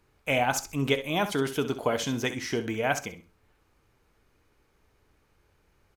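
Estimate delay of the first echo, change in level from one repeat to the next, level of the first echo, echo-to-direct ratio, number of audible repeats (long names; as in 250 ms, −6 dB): 65 ms, −14.0 dB, −12.0 dB, −12.0 dB, 2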